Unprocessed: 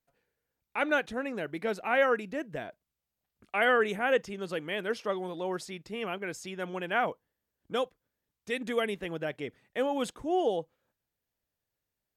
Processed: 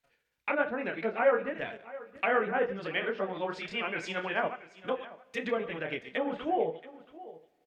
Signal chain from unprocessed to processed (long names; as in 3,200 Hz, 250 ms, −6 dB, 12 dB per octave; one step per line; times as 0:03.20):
delay that plays each chunk backwards 111 ms, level −12 dB
treble cut that deepens with the level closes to 960 Hz, closed at −27.5 dBFS
parametric band 2,600 Hz +11 dB 2.3 octaves
double-tracking delay 31 ms −4.5 dB
single-tap delay 1,074 ms −18 dB
time stretch by overlap-add 0.63×, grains 135 ms
coupled-rooms reverb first 0.45 s, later 3.3 s, from −20 dB, DRR 14 dB
level −2 dB